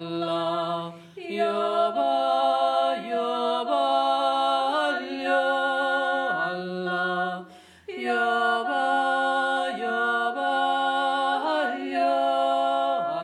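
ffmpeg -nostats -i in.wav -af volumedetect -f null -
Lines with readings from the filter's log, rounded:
mean_volume: -24.8 dB
max_volume: -11.0 dB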